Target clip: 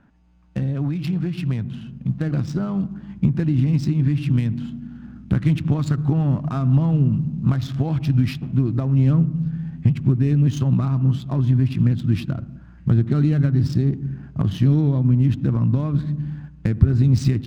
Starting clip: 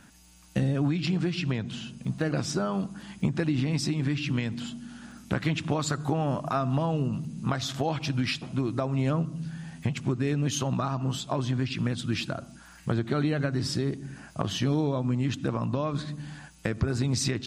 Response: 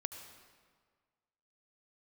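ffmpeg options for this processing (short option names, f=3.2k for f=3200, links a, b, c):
-filter_complex "[0:a]asubboost=boost=6:cutoff=240,asplit=2[a][b];[1:a]atrim=start_sample=2205,lowpass=2.2k[c];[b][c]afir=irnorm=-1:irlink=0,volume=-11dB[d];[a][d]amix=inputs=2:normalize=0,adynamicsmooth=sensitivity=6:basefreq=1.6k,volume=-3dB"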